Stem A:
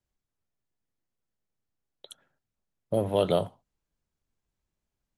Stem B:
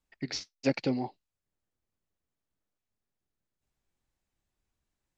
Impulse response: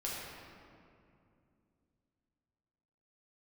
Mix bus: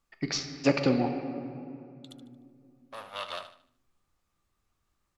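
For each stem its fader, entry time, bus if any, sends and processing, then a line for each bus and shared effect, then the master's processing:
-1.0 dB, 0.00 s, no send, echo send -11.5 dB, comb filter that takes the minimum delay 1.4 ms; band-pass filter 3.6 kHz, Q 0.99
+1.5 dB, 0.00 s, muted 1.09–2.09 s, send -5 dB, no echo send, wow and flutter 61 cents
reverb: on, RT60 2.5 s, pre-delay 6 ms
echo: feedback delay 75 ms, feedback 37%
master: peaking EQ 1.2 kHz +14 dB 0.22 oct

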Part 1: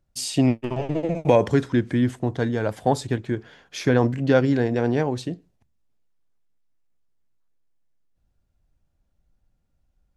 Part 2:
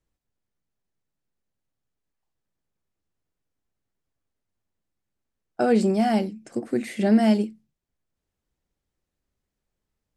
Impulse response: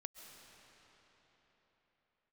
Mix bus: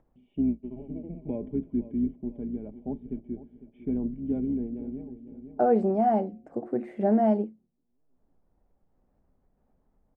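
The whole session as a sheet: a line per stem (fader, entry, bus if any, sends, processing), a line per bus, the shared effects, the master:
-6.0 dB, 0.00 s, send -19 dB, echo send -14.5 dB, octave divider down 2 oct, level -4 dB; cascade formant filter i; comb 4.9 ms, depth 54%; auto duck -21 dB, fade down 0.95 s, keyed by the second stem
-5.5 dB, 0.00 s, no send, no echo send, de-hum 179.8 Hz, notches 4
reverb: on, pre-delay 95 ms
echo: feedback delay 502 ms, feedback 42%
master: treble shelf 4.4 kHz -5.5 dB; upward compressor, threshold -55 dBFS; FFT filter 250 Hz 0 dB, 750 Hz +8 dB, 4.3 kHz -23 dB

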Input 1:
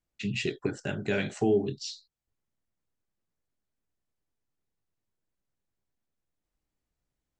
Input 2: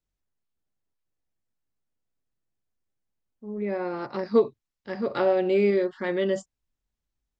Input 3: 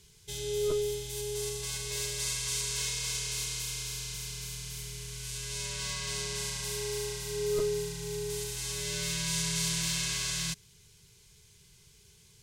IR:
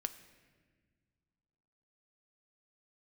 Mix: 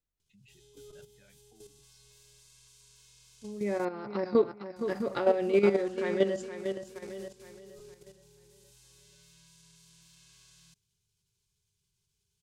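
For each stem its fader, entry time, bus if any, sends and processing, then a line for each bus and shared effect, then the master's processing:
-19.0 dB, 0.10 s, no send, no echo send, expander on every frequency bin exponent 2; compression 12:1, threshold -32 dBFS, peak gain reduction 11 dB
0.0 dB, 0.00 s, no send, echo send -8 dB, none
-17.5 dB, 0.20 s, muted 3.85–4.76 s, no send, no echo send, graphic EQ with 31 bands 100 Hz +4 dB, 500 Hz -9 dB, 2 kHz -7 dB; peak limiter -25 dBFS, peak gain reduction 7 dB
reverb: none
echo: feedback delay 468 ms, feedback 42%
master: level held to a coarse grid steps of 10 dB

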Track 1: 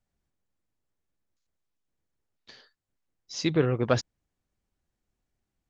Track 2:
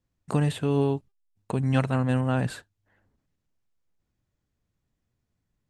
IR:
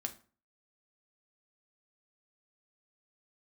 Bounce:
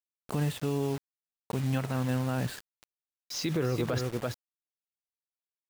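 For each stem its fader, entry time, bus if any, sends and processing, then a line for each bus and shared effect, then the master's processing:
+2.5 dB, 0.00 s, no send, echo send -8.5 dB, de-esser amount 80%
-4.5 dB, 0.00 s, no send, no echo send, none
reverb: none
echo: delay 335 ms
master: bit crusher 7-bit; peak limiter -20 dBFS, peak gain reduction 14 dB

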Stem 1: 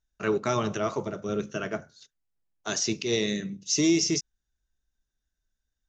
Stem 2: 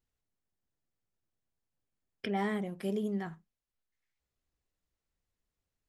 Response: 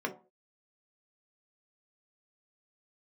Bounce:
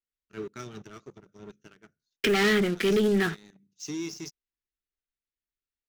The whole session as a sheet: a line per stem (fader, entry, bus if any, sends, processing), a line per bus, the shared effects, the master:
-17.0 dB, 0.10 s, no send, rotary cabinet horn 5.5 Hz; auto duck -7 dB, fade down 1.30 s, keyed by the second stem
+0.5 dB, 0.00 s, no send, three-band isolator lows -12 dB, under 260 Hz, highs -22 dB, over 4.1 kHz; waveshaping leveller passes 3; treble shelf 3.5 kHz +10.5 dB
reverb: none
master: high-order bell 750 Hz -12 dB 1.2 oct; waveshaping leveller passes 2

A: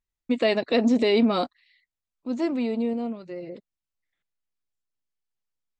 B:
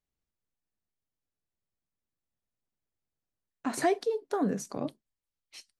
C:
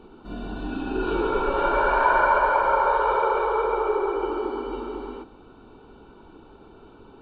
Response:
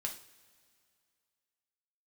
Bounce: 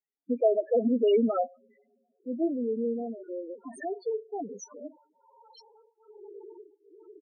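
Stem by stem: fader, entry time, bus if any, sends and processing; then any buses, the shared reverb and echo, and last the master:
0.0 dB, 0.00 s, send -12 dB, none
+0.5 dB, 0.00 s, send -6 dB, peak limiter -26.5 dBFS, peak gain reduction 10.5 dB
-13.0 dB, 2.20 s, no send, peak limiter -19.5 dBFS, peak gain reduction 11 dB; tremolo of two beating tones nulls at 1.2 Hz; auto duck -11 dB, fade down 0.30 s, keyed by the second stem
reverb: on, pre-delay 3 ms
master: high-pass 340 Hz 12 dB/octave; loudest bins only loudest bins 4

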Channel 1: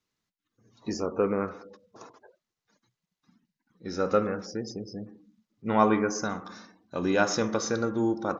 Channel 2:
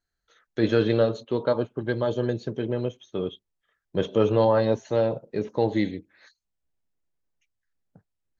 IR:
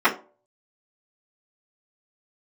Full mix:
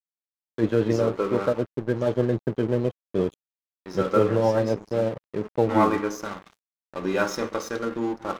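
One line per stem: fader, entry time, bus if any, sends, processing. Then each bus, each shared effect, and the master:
-2.0 dB, 0.00 s, send -19.5 dB, none
-6.0 dB, 0.00 s, no send, level rider gain up to 15.5 dB; peaking EQ 5.3 kHz -15 dB 1.4 oct; rotary cabinet horn 8 Hz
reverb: on, RT60 0.40 s, pre-delay 3 ms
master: crossover distortion -37 dBFS

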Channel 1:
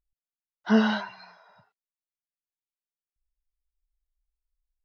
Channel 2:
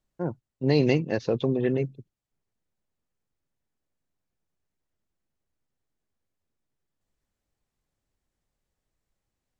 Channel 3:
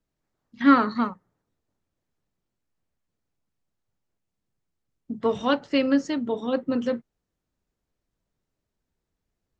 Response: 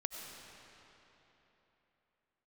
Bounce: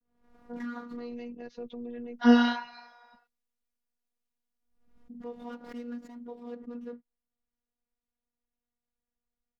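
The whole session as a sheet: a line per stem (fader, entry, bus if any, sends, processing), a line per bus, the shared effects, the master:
+2.0 dB, 1.55 s, no bus, no send, none
-7.5 dB, 0.30 s, bus A, no send, none
-15.5 dB, 0.00 s, bus A, no send, median filter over 15 samples; vibrato 0.54 Hz 65 cents; swell ahead of each attack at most 81 dB/s
bus A: 0.0 dB, treble shelf 4.3 kHz -10.5 dB; peak limiter -28.5 dBFS, peak gain reduction 11.5 dB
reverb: none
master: robot voice 240 Hz

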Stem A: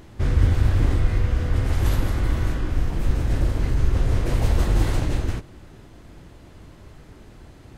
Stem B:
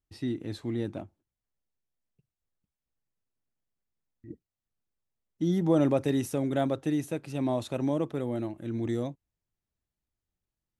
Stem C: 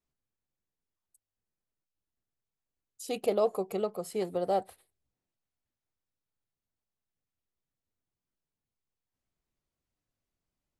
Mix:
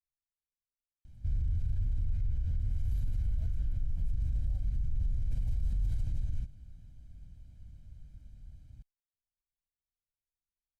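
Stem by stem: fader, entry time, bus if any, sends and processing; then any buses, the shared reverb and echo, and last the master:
-2.0 dB, 1.05 s, no send, none
mute
-10.0 dB, 0.00 s, no send, none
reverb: none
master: amplifier tone stack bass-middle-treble 10-0-1; comb 1.3 ms, depth 97%; peak limiter -25 dBFS, peak gain reduction 14 dB

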